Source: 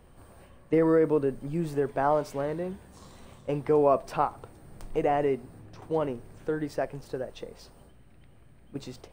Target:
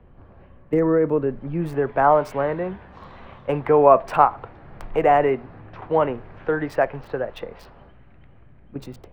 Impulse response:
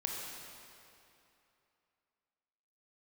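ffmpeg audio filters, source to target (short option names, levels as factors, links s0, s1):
-filter_complex "[0:a]lowshelf=f=340:g=5,acrossover=split=200|640|2900[s0][s1][s2][s3];[s2]dynaudnorm=f=390:g=9:m=4.47[s4];[s3]aeval=exprs='val(0)*gte(abs(val(0)),0.00473)':c=same[s5];[s0][s1][s4][s5]amix=inputs=4:normalize=0,volume=1.12"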